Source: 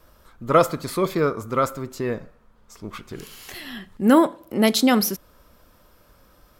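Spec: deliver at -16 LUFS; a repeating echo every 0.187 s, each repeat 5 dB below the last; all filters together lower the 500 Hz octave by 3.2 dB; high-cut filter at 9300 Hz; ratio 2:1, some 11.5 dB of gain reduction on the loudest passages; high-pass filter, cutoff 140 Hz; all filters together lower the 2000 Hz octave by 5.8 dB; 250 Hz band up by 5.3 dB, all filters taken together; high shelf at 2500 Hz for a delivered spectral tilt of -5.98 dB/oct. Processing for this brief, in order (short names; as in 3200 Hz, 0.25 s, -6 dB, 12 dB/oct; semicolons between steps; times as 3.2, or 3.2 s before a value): HPF 140 Hz; LPF 9300 Hz; bell 250 Hz +8.5 dB; bell 500 Hz -6.5 dB; bell 2000 Hz -6 dB; high shelf 2500 Hz -3 dB; compressor 2:1, threshold -28 dBFS; feedback echo 0.187 s, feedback 56%, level -5 dB; gain +12 dB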